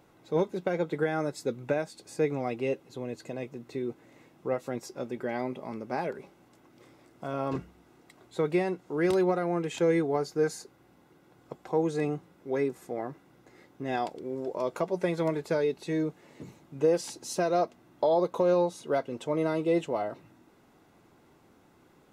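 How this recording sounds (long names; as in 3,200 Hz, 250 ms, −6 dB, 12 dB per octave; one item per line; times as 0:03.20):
background noise floor −61 dBFS
spectral slope −4.0 dB per octave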